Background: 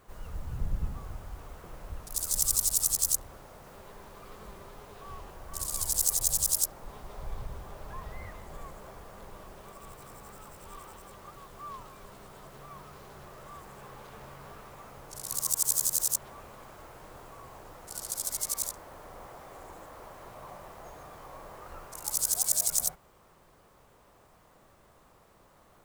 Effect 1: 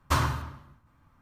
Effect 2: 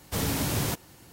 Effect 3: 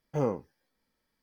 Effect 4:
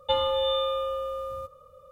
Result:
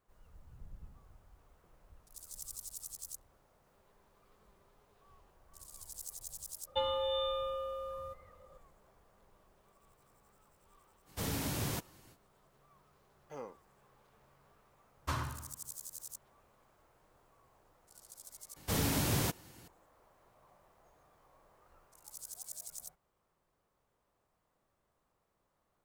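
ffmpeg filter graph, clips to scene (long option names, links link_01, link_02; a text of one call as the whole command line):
ffmpeg -i bed.wav -i cue0.wav -i cue1.wav -i cue2.wav -i cue3.wav -filter_complex "[2:a]asplit=2[link_01][link_02];[0:a]volume=-19.5dB[link_03];[3:a]highpass=frequency=1100:poles=1[link_04];[link_03]asplit=2[link_05][link_06];[link_05]atrim=end=18.564[link_07];[link_02]atrim=end=1.12,asetpts=PTS-STARTPTS,volume=-4dB[link_08];[link_06]atrim=start=19.676[link_09];[4:a]atrim=end=1.91,asetpts=PTS-STARTPTS,volume=-8.5dB,afade=type=in:duration=0.004:curve=hsin,afade=type=out:start_time=1.906:duration=0.004:curve=hsin,adelay=6670[link_10];[link_01]atrim=end=1.12,asetpts=PTS-STARTPTS,volume=-8.5dB,afade=type=in:duration=0.05,afade=type=out:start_time=1.07:duration=0.05,adelay=11050[link_11];[link_04]atrim=end=1.22,asetpts=PTS-STARTPTS,volume=-9dB,afade=type=in:duration=0.004:curve=hsin,afade=type=out:start_time=1.216:duration=0.004:curve=hsin,adelay=580356S[link_12];[1:a]atrim=end=1.21,asetpts=PTS-STARTPTS,volume=-11.5dB,afade=type=in:duration=0.004:curve=hsin,afade=type=out:start_time=1.206:duration=0.004:curve=hsin,adelay=14970[link_13];[link_07][link_08]acrossfade=duration=0.004:curve1=hsin:curve2=hsin[link_14];[link_14][link_09]acrossfade=duration=0.004:curve1=hsin:curve2=hsin[link_15];[link_15][link_10][link_11][link_12][link_13]amix=inputs=5:normalize=0" out.wav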